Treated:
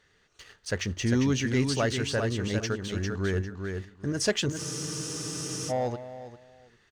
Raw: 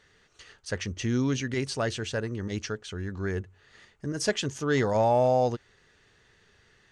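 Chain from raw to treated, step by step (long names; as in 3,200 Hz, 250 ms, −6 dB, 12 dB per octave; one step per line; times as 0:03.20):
leveller curve on the samples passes 1
repeating echo 400 ms, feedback 20%, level −5.5 dB
frozen spectrum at 0:04.60, 1.10 s
level −1.5 dB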